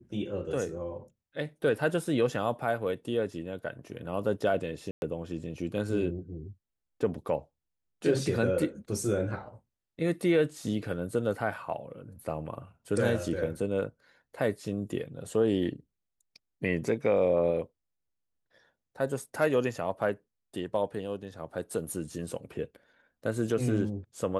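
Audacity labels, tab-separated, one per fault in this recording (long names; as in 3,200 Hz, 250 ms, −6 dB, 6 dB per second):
4.910000	5.020000	drop-out 111 ms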